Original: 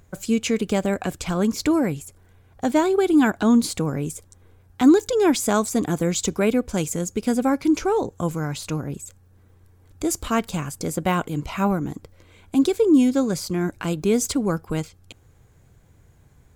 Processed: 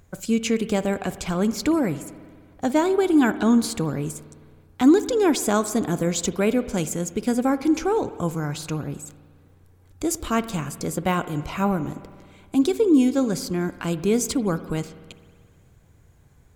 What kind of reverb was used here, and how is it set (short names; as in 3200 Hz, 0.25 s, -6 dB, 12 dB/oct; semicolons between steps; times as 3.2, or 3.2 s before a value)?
spring tank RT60 1.8 s, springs 53 ms, chirp 40 ms, DRR 13.5 dB; gain -1 dB